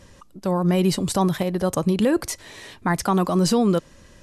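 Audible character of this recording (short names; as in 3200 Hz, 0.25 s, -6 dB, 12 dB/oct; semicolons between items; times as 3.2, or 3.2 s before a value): MP2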